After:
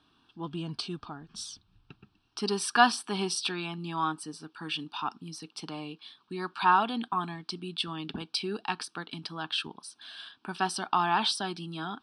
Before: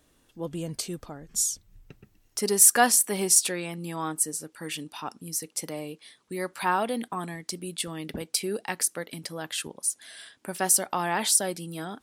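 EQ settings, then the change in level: high-pass 290 Hz 6 dB/octave; Bessel low-pass 4.7 kHz, order 8; static phaser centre 2 kHz, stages 6; +5.5 dB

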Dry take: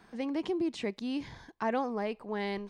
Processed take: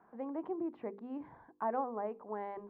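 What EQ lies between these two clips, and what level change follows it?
low-pass 1.1 kHz 24 dB/octave; tilt EQ +4 dB/octave; hum notches 50/100/150/200/250/300/350/400/450/500 Hz; 0.0 dB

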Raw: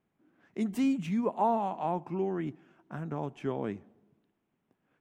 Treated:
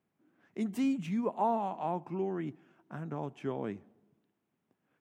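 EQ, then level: high-pass 74 Hz; -2.5 dB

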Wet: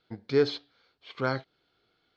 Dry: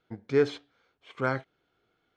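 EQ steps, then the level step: dynamic bell 2.2 kHz, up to -4 dB, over -44 dBFS, Q 0.95; resonant low-pass 4.5 kHz, resonance Q 4; 0.0 dB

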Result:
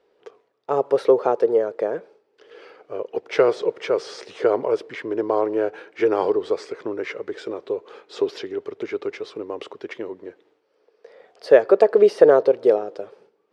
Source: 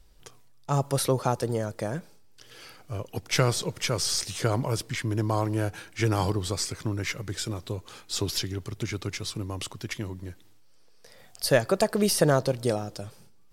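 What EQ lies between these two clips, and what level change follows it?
resonant high-pass 430 Hz, resonance Q 4.3; low-pass 2.3 kHz 12 dB/octave; +2.0 dB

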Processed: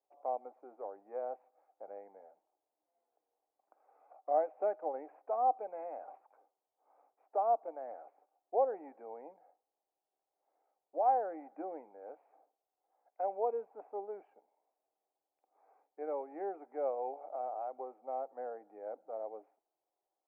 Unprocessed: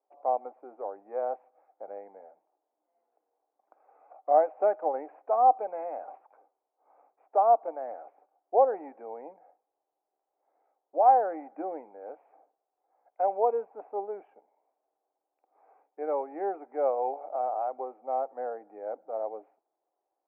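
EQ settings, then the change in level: dynamic bell 1.1 kHz, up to -4 dB, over -36 dBFS, Q 0.85; -6.5 dB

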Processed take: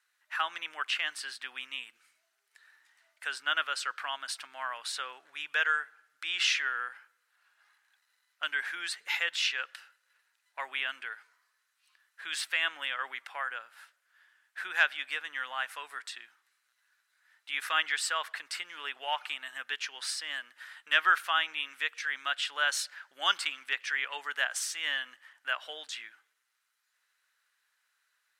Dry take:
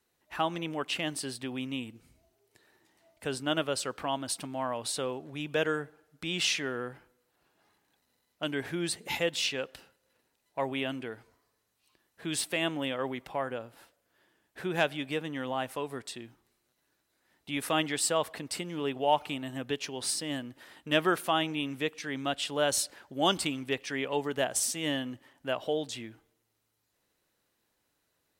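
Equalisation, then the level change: low-pass 12 kHz 12 dB/octave; dynamic bell 9.5 kHz, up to -7 dB, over -50 dBFS, Q 1.1; resonant high-pass 1.5 kHz, resonance Q 2.7; 0.0 dB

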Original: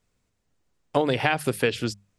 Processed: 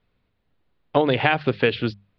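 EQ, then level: steep low-pass 4.2 kHz 48 dB/octave; +3.5 dB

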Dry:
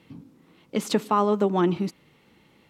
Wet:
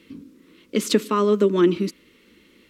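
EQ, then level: static phaser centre 320 Hz, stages 4; +6.5 dB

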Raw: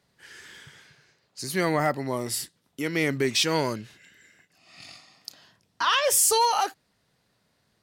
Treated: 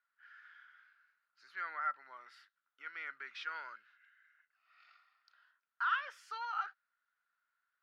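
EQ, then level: band-pass filter 1.4 kHz, Q 9.4; distance through air 300 m; differentiator; +15.5 dB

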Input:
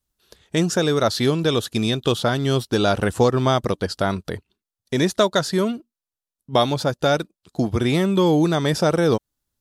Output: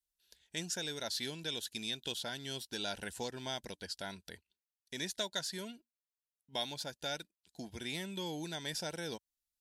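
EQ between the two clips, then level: Butterworth band-stop 1.2 kHz, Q 3; amplifier tone stack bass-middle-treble 5-5-5; peaking EQ 110 Hz -13 dB 0.77 oct; -4.0 dB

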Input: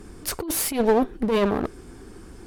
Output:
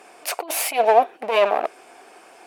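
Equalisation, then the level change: resonant high-pass 680 Hz, resonance Q 4.9; peaking EQ 2.5 kHz +11 dB 0.54 oct; 0.0 dB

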